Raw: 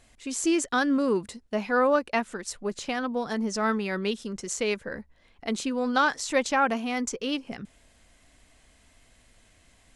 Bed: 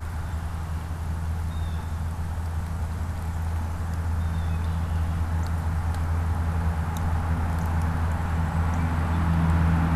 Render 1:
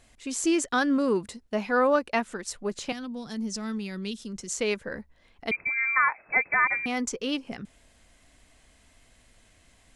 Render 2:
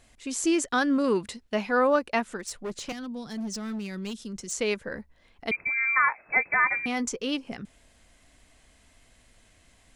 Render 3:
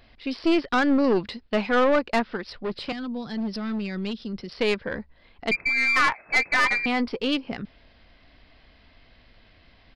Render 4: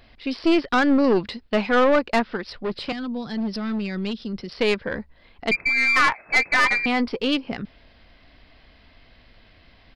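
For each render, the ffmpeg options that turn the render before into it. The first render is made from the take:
-filter_complex "[0:a]asettb=1/sr,asplit=3[a][b][c];[a]atrim=end=2.924[d];[b]atrim=start=2.92:end=4.59,asetpts=PTS-STARTPTS,afade=t=in:d=0.004:c=qsin,afade=t=out:st=1.666:d=0.004:c=qsin,acrossover=split=260|3000[e][f][g];[f]acompressor=threshold=-53dB:ratio=2:attack=3.2:release=140:knee=2.83:detection=peak[h];[e][h][g]amix=inputs=3:normalize=0[i];[c]atrim=start=4.586[j];[d][i]acrossfade=d=0.004:c1=hsin:c2=qsin[k];[k][j]acrossfade=d=0.004:c1=qsin:c2=hsin,asettb=1/sr,asplit=3[l][m][n];[l]atrim=end=5.514[o];[m]atrim=start=5.51:end=6.86,asetpts=PTS-STARTPTS,afade=t=in:d=0.004:c=qsin,afade=t=out:st=1.346:d=0.004:c=qsin,lowpass=f=2.2k:t=q:w=0.5098,lowpass=f=2.2k:t=q:w=0.6013,lowpass=f=2.2k:t=q:w=0.9,lowpass=f=2.2k:t=q:w=2.563,afreqshift=-2600[p];[n]atrim=start=6.856[q];[o][p]acrossfade=d=0.004:c1=hsin:c2=qsin[r];[r][q]acrossfade=d=0.004:c1=qsin:c2=hsin"
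-filter_complex "[0:a]asettb=1/sr,asplit=3[a][b][c];[a]atrim=end=1.044[d];[b]atrim=start=1.04:end=1.62,asetpts=PTS-STARTPTS,afade=t=in:d=0.004:c=qsin,afade=t=out:st=0.576:d=0.004:c=qsin,equalizer=f=2.8k:t=o:w=2:g=6[e];[c]atrim=start=1.616[f];[d][e]acrossfade=d=0.004:c1=hsin:c2=qsin[g];[g][f]acrossfade=d=0.004:c1=qsin:c2=hsin,asettb=1/sr,asplit=3[h][i][j];[h]atrim=end=2.394[k];[i]atrim=start=2.39:end=4.52,asetpts=PTS-STARTPTS,afade=t=in:d=0.004:c=qsin,afade=t=out:st=2.126:d=0.004:c=qsin,volume=29.5dB,asoftclip=hard,volume=-29.5dB[l];[j]atrim=start=4.516[m];[k][l]acrossfade=d=0.004:c1=hsin:c2=qsin[n];[n][m]acrossfade=d=0.004:c1=qsin:c2=hsin,asettb=1/sr,asplit=3[o][p][q];[o]atrim=end=5.664[r];[p]atrim=start=5.66:end=7.13,asetpts=PTS-STARTPTS,afade=t=in:d=0.004:c=qsin,afade=t=out:st=1.466:d=0.004:c=qsin,asplit=2[s][t];[t]adelay=17,volume=-13.5dB[u];[s][u]amix=inputs=2:normalize=0,atrim=end_sample=64827[v];[q]atrim=start=7.126[w];[r][v]acrossfade=d=0.004:c1=hsin:c2=qsin[x];[x][w]acrossfade=d=0.004:c1=qsin:c2=hsin"
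-af "aresample=11025,aeval=exprs='0.316*sin(PI/2*1.41*val(0)/0.316)':c=same,aresample=44100,aeval=exprs='(tanh(5.01*val(0)+0.5)-tanh(0.5))/5.01':c=same"
-af "volume=2.5dB"

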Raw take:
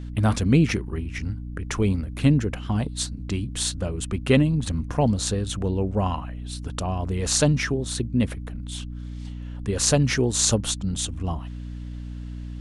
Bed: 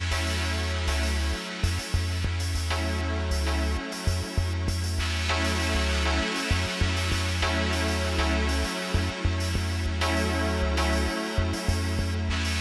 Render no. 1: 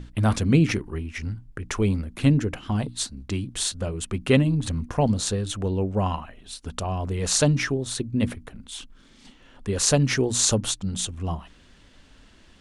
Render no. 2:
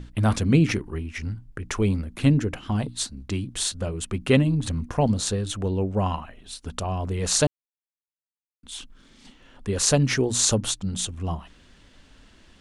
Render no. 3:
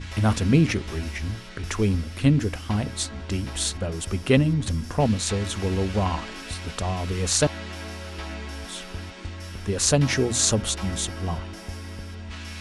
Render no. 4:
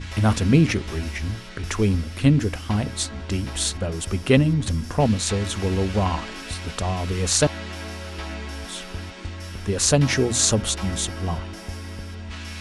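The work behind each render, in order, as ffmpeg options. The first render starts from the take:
-af "bandreject=f=60:t=h:w=6,bandreject=f=120:t=h:w=6,bandreject=f=180:t=h:w=6,bandreject=f=240:t=h:w=6,bandreject=f=300:t=h:w=6"
-filter_complex "[0:a]asplit=3[a][b][c];[a]atrim=end=7.47,asetpts=PTS-STARTPTS,afade=t=out:st=7.466:d=0.004:c=hsin[d];[b]atrim=start=7.47:end=8.63,asetpts=PTS-STARTPTS,volume=0[e];[c]atrim=start=8.63,asetpts=PTS-STARTPTS,afade=t=in:d=0.004:c=hsin[f];[d][e][f]concat=n=3:v=0:a=1"
-filter_complex "[1:a]volume=-9.5dB[a];[0:a][a]amix=inputs=2:normalize=0"
-af "volume=2dB,alimiter=limit=-2dB:level=0:latency=1"

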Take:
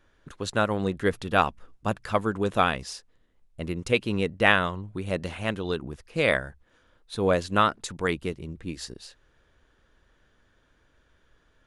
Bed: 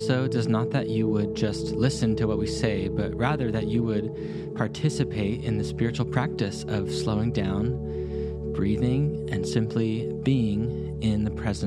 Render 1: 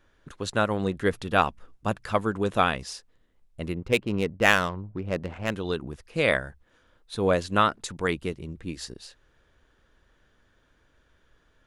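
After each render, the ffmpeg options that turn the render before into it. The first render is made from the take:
-filter_complex "[0:a]asplit=3[a][b][c];[a]afade=t=out:st=3.74:d=0.02[d];[b]adynamicsmooth=sensitivity=3:basefreq=1.1k,afade=t=in:st=3.74:d=0.02,afade=t=out:st=5.5:d=0.02[e];[c]afade=t=in:st=5.5:d=0.02[f];[d][e][f]amix=inputs=3:normalize=0"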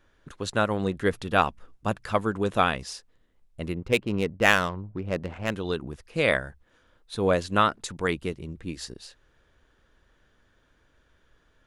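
-af anull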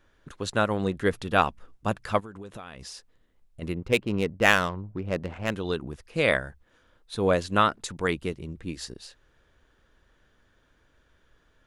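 -filter_complex "[0:a]asplit=3[a][b][c];[a]afade=t=out:st=2.19:d=0.02[d];[b]acompressor=threshold=-37dB:ratio=10:attack=3.2:release=140:knee=1:detection=peak,afade=t=in:st=2.19:d=0.02,afade=t=out:st=3.61:d=0.02[e];[c]afade=t=in:st=3.61:d=0.02[f];[d][e][f]amix=inputs=3:normalize=0"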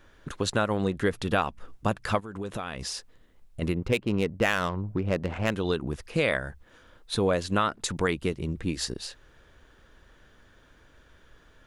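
-filter_complex "[0:a]asplit=2[a][b];[b]alimiter=limit=-13.5dB:level=0:latency=1:release=125,volume=2.5dB[c];[a][c]amix=inputs=2:normalize=0,acompressor=threshold=-25dB:ratio=2.5"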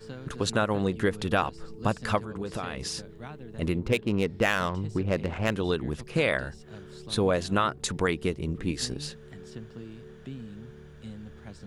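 -filter_complex "[1:a]volume=-17.5dB[a];[0:a][a]amix=inputs=2:normalize=0"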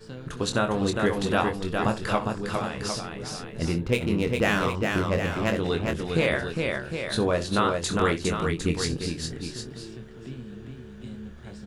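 -filter_complex "[0:a]asplit=2[a][b];[b]adelay=24,volume=-7dB[c];[a][c]amix=inputs=2:normalize=0,aecho=1:1:65|407|756:0.178|0.631|0.398"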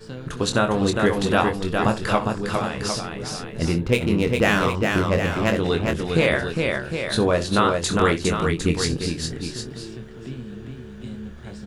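-af "volume=4.5dB"

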